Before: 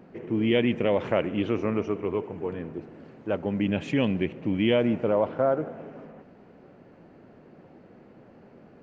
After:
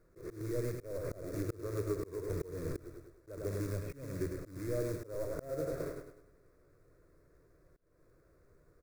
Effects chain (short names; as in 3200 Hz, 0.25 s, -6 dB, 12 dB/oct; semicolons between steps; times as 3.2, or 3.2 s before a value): delta modulation 32 kbps, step -37.5 dBFS; gate -38 dBFS, range -30 dB; tilt -3.5 dB/oct; short-mantissa float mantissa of 2-bit; compressor 16:1, threshold -31 dBFS, peak gain reduction 20.5 dB; fixed phaser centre 820 Hz, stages 6; feedback echo 0.102 s, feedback 38%, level -6.5 dB; auto swell 0.286 s; gain +4.5 dB